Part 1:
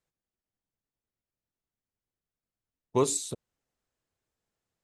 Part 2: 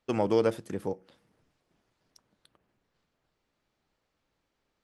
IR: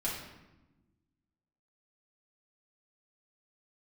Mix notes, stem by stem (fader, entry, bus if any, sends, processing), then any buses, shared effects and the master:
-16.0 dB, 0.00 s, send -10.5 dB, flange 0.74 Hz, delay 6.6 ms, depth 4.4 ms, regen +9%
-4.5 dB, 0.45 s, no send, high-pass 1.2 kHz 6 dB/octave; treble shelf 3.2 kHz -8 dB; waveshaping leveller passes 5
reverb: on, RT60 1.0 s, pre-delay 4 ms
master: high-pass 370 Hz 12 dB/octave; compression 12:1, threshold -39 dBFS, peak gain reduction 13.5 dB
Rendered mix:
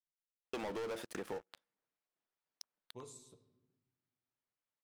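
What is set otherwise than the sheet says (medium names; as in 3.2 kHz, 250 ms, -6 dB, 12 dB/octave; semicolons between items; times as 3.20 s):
stem 1 -16.0 dB -> -23.5 dB; master: missing high-pass 370 Hz 12 dB/octave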